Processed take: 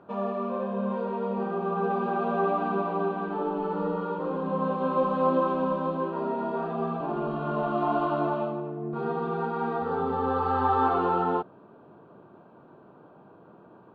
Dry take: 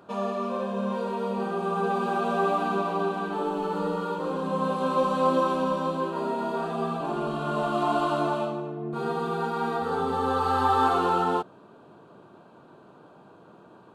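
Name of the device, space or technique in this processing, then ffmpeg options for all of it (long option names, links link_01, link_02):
phone in a pocket: -af "lowpass=3300,highshelf=frequency=2400:gain=-11"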